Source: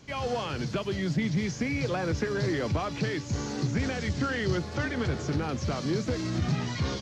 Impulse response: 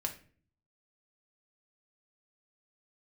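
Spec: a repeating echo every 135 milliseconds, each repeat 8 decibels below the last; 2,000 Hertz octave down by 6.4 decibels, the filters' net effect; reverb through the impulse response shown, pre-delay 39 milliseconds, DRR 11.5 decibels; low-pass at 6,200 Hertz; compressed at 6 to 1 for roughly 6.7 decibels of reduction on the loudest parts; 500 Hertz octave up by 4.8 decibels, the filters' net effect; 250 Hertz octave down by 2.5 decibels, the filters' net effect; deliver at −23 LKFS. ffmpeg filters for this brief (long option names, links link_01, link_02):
-filter_complex "[0:a]lowpass=6200,equalizer=frequency=250:width_type=o:gain=-6,equalizer=frequency=500:width_type=o:gain=8,equalizer=frequency=2000:width_type=o:gain=-8.5,acompressor=threshold=-29dB:ratio=6,aecho=1:1:135|270|405|540|675:0.398|0.159|0.0637|0.0255|0.0102,asplit=2[link_01][link_02];[1:a]atrim=start_sample=2205,adelay=39[link_03];[link_02][link_03]afir=irnorm=-1:irlink=0,volume=-12.5dB[link_04];[link_01][link_04]amix=inputs=2:normalize=0,volume=10dB"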